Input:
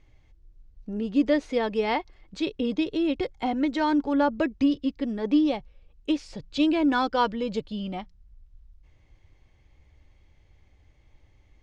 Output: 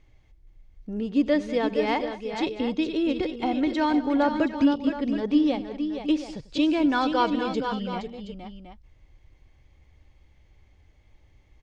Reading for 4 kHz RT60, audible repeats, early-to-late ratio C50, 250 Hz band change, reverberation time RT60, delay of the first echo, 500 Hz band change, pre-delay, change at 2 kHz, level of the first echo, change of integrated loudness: no reverb, 4, no reverb, +1.5 dB, no reverb, 94 ms, +1.0 dB, no reverb, +1.0 dB, -19.5 dB, +1.0 dB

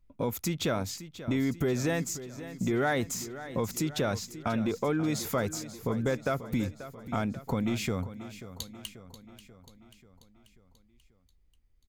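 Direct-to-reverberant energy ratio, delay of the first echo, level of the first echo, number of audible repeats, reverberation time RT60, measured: no reverb, 537 ms, -14.0 dB, 5, no reverb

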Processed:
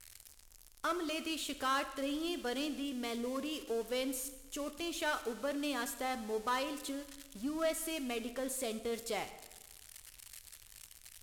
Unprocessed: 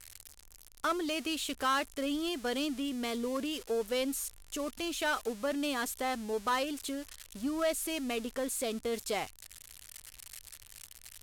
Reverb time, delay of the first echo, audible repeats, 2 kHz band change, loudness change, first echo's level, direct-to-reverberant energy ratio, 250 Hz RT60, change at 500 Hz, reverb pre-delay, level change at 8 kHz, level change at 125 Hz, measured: 1.2 s, no echo, no echo, -3.5 dB, -3.5 dB, no echo, 10.0 dB, 1.2 s, -3.5 dB, 7 ms, -3.5 dB, no reading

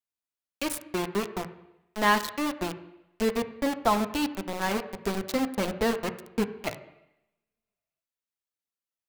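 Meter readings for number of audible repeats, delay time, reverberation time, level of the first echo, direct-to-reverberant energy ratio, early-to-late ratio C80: no echo, no echo, 0.85 s, no echo, 8.0 dB, 14.5 dB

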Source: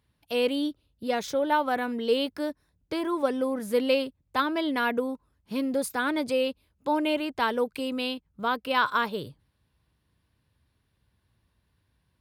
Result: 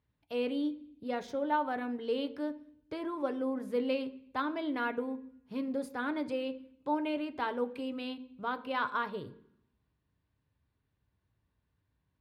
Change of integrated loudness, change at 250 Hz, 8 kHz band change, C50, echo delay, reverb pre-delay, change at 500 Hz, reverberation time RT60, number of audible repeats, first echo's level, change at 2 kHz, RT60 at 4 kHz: -7.5 dB, -5.5 dB, under -15 dB, 16.0 dB, no echo, 3 ms, -8.0 dB, 0.65 s, no echo, no echo, -9.0 dB, 0.75 s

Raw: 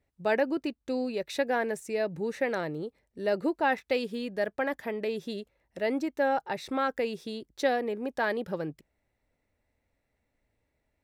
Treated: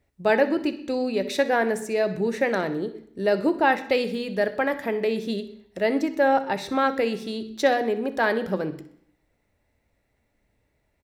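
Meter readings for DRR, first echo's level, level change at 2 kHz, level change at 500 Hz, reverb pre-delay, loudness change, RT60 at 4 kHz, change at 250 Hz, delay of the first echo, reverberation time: 10.0 dB, -16.5 dB, +6.5 dB, +6.5 dB, 3 ms, +6.5 dB, 0.65 s, +6.5 dB, 63 ms, 0.65 s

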